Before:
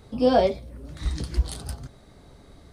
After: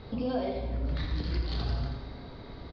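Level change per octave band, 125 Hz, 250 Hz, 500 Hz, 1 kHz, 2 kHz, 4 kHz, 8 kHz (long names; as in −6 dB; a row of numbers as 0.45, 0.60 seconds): −1.0 dB, −6.0 dB, −11.5 dB, −11.5 dB, −4.5 dB, −4.0 dB, below −20 dB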